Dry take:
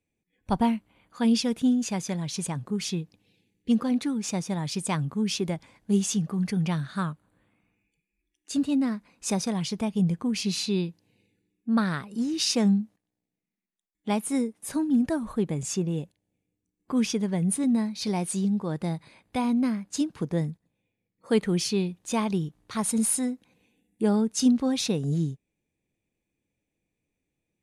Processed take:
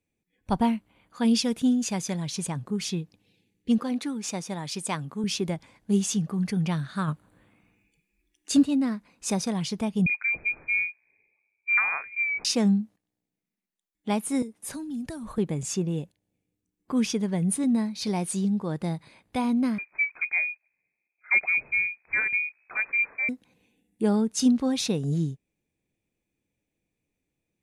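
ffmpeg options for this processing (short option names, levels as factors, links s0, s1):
-filter_complex "[0:a]asettb=1/sr,asplit=3[s0][s1][s2];[s0]atrim=end=1.254[s3];[s1]atrim=start=1.25:end=2.3,asetpts=PTS-STARTPTS,afade=t=in:d=0.004:c=qsin,afade=t=out:st=1.046:d=0.004:c=qsin,equalizer=f=10000:w=0.31:g=3[s4];[s2]atrim=start=2.296[s5];[s3][s4]acrossfade=d=0.004:c1=hsin:c2=qsin[s6];[s6][s5]acrossfade=d=0.004:c1=qsin:c2=hsin,asettb=1/sr,asplit=3[s7][s8][s9];[s7]atrim=end=3.784[s10];[s8]atrim=start=3.78:end=5.24,asetpts=PTS-STARTPTS,afade=t=in:d=0.004:c=qsin,afade=t=out:st=1.456:d=0.004:c=qsin,highpass=f=290:p=1[s11];[s9]atrim=start=5.236[s12];[s10][s11]acrossfade=d=0.004:c1=hsin:c2=qsin[s13];[s13][s12]acrossfade=d=0.004:c1=qsin:c2=hsin,asplit=3[s14][s15][s16];[s14]afade=t=out:st=7.07:d=0.02[s17];[s15]acontrast=71,afade=t=in:st=7.07:d=0.02,afade=t=out:st=8.62:d=0.02[s18];[s16]afade=t=in:st=8.62:d=0.02[s19];[s17][s18][s19]amix=inputs=3:normalize=0,asettb=1/sr,asplit=3[s20][s21][s22];[s20]atrim=end=10.064[s23];[s21]atrim=start=10.06:end=12.45,asetpts=PTS-STARTPTS,afade=t=in:d=0.004:c=qsin,afade=t=out:st=2.386:d=0.004:c=qsin,lowpass=f=2200:t=q:w=0.5098,lowpass=f=2200:t=q:w=0.6013,lowpass=f=2200:t=q:w=0.9,lowpass=f=2200:t=q:w=2.563,afreqshift=-2600[s24];[s22]atrim=start=12.446[s25];[s23][s24]acrossfade=d=0.004:c1=hsin:c2=qsin[s26];[s26][s25]acrossfade=d=0.004:c1=qsin:c2=hsin,asettb=1/sr,asplit=3[s27][s28][s29];[s27]atrim=end=14.424[s30];[s28]atrim=start=14.42:end=15.38,asetpts=PTS-STARTPTS,afade=t=in:d=0.004:c=qsin,afade=t=out:st=0.956:d=0.004:c=qsin,acrossover=split=140|3000[s31][s32][s33];[s32]acompressor=threshold=0.0178:ratio=6:attack=3.2:release=140:knee=2.83:detection=peak[s34];[s31][s34][s33]amix=inputs=3:normalize=0[s35];[s29]atrim=start=15.376[s36];[s30][s35]acrossfade=d=0.004:c1=hsin:c2=qsin[s37];[s37][s36]acrossfade=d=0.004:c1=qsin:c2=hsin,asettb=1/sr,asplit=3[s38][s39][s40];[s38]atrim=end=19.784[s41];[s39]atrim=start=19.78:end=23.29,asetpts=PTS-STARTPTS,afade=t=in:d=0.004:c=qsin,afade=t=out:st=3.506:d=0.004:c=qsin,lowpass=f=2200:t=q:w=0.5098,lowpass=f=2200:t=q:w=0.6013,lowpass=f=2200:t=q:w=0.9,lowpass=f=2200:t=q:w=2.563,afreqshift=-2600[s42];[s40]atrim=start=23.286[s43];[s41][s42]acrossfade=d=0.004:c1=hsin:c2=qsin[s44];[s44][s43]acrossfade=d=0.004:c1=qsin:c2=hsin"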